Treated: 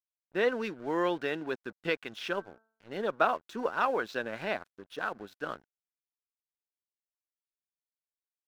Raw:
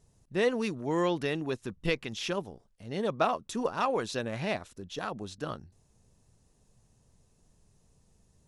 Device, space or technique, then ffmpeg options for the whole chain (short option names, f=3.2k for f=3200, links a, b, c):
pocket radio on a weak battery: -filter_complex "[0:a]highpass=270,lowpass=3.6k,aeval=exprs='sgn(val(0))*max(abs(val(0))-0.00237,0)':c=same,equalizer=f=1.5k:t=o:w=0.27:g=9.5,asettb=1/sr,asplit=3[a][b][c];[a]atrim=end=2.304[d];[b]atrim=start=2.3:end=2.96,asetpts=PTS-STARTPTS,afade=t=in:d=0.004:c=qsin,afade=t=out:st=0.656:d=0.004:c=qsin,bandreject=f=222.3:t=h:w=4,bandreject=f=444.6:t=h:w=4,bandreject=f=666.9:t=h:w=4,bandreject=f=889.2:t=h:w=4,bandreject=f=1.1115k:t=h:w=4,bandreject=f=1.3338k:t=h:w=4,bandreject=f=1.5561k:t=h:w=4[e];[c]atrim=start=2.956[f];[d][e]acrossfade=d=0.004:c1=hsin:c2=qsin[g];[g][f]acrossfade=d=0.004:c1=qsin:c2=hsin"